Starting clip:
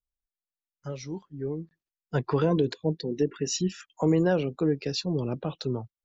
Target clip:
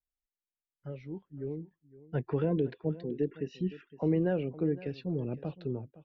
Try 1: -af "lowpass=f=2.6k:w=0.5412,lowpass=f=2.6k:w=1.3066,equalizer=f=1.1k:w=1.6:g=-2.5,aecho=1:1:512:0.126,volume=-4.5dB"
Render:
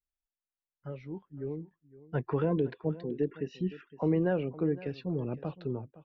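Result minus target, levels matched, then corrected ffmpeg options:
1000 Hz band +4.0 dB
-af "lowpass=f=2.6k:w=0.5412,lowpass=f=2.6k:w=1.3066,equalizer=f=1.1k:w=1.6:g=-10.5,aecho=1:1:512:0.126,volume=-4.5dB"

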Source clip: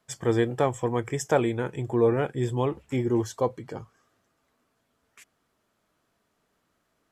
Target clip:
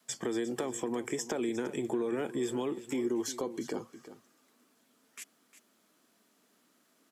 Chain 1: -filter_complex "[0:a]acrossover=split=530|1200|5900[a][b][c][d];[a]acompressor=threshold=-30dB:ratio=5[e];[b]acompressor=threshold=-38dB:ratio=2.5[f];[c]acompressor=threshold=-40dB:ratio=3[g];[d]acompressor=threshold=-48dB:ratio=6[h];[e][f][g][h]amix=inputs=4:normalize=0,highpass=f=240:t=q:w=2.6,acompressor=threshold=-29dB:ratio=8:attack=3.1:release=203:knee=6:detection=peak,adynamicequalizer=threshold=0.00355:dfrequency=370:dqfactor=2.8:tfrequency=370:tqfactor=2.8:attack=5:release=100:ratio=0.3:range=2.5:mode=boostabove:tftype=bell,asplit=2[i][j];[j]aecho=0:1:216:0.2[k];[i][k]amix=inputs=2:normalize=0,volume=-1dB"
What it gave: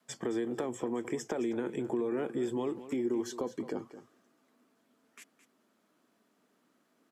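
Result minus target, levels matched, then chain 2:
echo 0.139 s early; 4000 Hz band -5.5 dB
-filter_complex "[0:a]acrossover=split=530|1200|5900[a][b][c][d];[a]acompressor=threshold=-30dB:ratio=5[e];[b]acompressor=threshold=-38dB:ratio=2.5[f];[c]acompressor=threshold=-40dB:ratio=3[g];[d]acompressor=threshold=-48dB:ratio=6[h];[e][f][g][h]amix=inputs=4:normalize=0,highpass=f=240:t=q:w=2.6,highshelf=f=2.8k:g=11,acompressor=threshold=-29dB:ratio=8:attack=3.1:release=203:knee=6:detection=peak,adynamicequalizer=threshold=0.00355:dfrequency=370:dqfactor=2.8:tfrequency=370:tqfactor=2.8:attack=5:release=100:ratio=0.3:range=2.5:mode=boostabove:tftype=bell,asplit=2[i][j];[j]aecho=0:1:355:0.2[k];[i][k]amix=inputs=2:normalize=0,volume=-1dB"

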